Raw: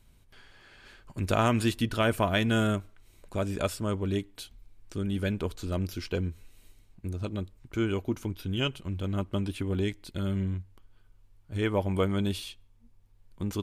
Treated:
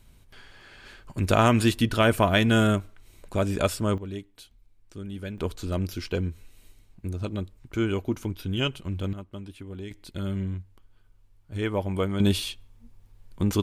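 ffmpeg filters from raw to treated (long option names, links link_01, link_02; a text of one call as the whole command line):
ffmpeg -i in.wav -af "asetnsamples=nb_out_samples=441:pad=0,asendcmd='3.98 volume volume -6dB;5.38 volume volume 2.5dB;9.13 volume volume -9dB;9.91 volume volume 0dB;12.2 volume volume 8dB',volume=5dB" out.wav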